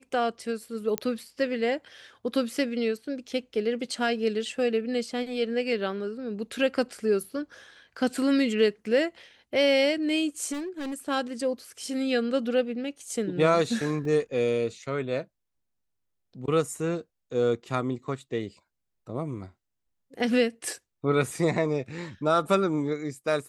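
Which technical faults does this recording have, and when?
0.98 s: pop -11 dBFS
10.52–10.94 s: clipped -30.5 dBFS
14.05 s: dropout 2.2 ms

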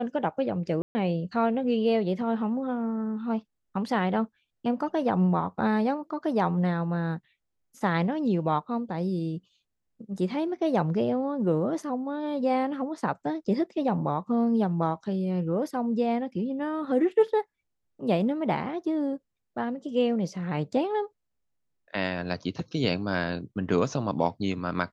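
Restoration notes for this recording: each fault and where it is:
0.82–0.95 s: dropout 130 ms

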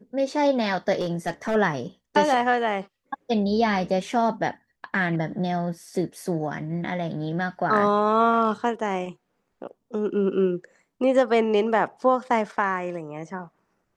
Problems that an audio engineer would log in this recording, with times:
0.99–1.56 s: clipped -20.5 dBFS

